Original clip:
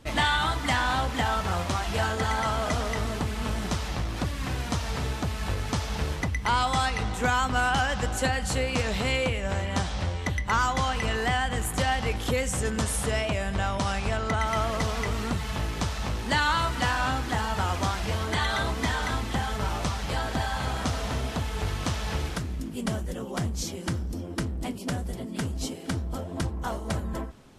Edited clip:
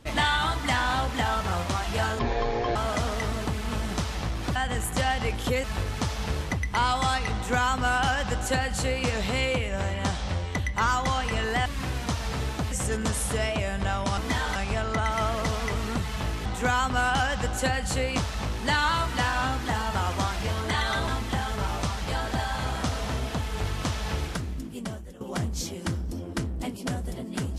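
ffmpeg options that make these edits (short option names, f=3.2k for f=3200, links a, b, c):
-filter_complex "[0:a]asplit=13[a][b][c][d][e][f][g][h][i][j][k][l][m];[a]atrim=end=2.194[n];[b]atrim=start=2.19:end=2.49,asetpts=PTS-STARTPTS,asetrate=23373,aresample=44100,atrim=end_sample=24962,asetpts=PTS-STARTPTS[o];[c]atrim=start=2.486:end=4.292[p];[d]atrim=start=11.368:end=12.452[q];[e]atrim=start=5.348:end=11.372[r];[f]atrim=start=4.288:end=5.352[s];[g]atrim=start=12.448:end=13.912[t];[h]atrim=start=18.708:end=19.092[u];[i]atrim=start=13.908:end=15.812[v];[j]atrim=start=7.048:end=8.772[w];[k]atrim=start=15.808:end=18.712[x];[l]atrim=start=19.088:end=23.22,asetpts=PTS-STARTPTS,afade=t=out:st=3.382:d=0.75:silence=0.188365[y];[m]atrim=start=23.22,asetpts=PTS-STARTPTS,afade=t=in:d=0.004:c=hsin:silence=0.188365[z];[n][o]acrossfade=d=0.004:c1=hsin:c2=hsin[aa];[aa][p]acrossfade=d=0.004:c1=hsin:c2=hsin[ab];[ab][q]acrossfade=d=0.004:c1=hsin:c2=hsin[ac];[ac][r]acrossfade=d=0.004:c1=hsin:c2=hsin[ad];[ad][s]acrossfade=d=0.004:c1=hsin:c2=hsin[ae];[ae][t]acrossfade=d=0.004:c1=hsin:c2=hsin[af];[af][u]acrossfade=d=0.004:c1=hsin:c2=hsin[ag];[ag][v]acrossfade=d=0.004:c1=hsin:c2=hsin[ah];[ah][w]acrossfade=d=0.004:c1=hsin:c2=hsin[ai];[ai][x]acrossfade=d=0.004:c1=hsin:c2=hsin[aj];[y][z]concat=n=2:v=0:a=1[ak];[aj][ak]acrossfade=d=0.004:c1=hsin:c2=hsin"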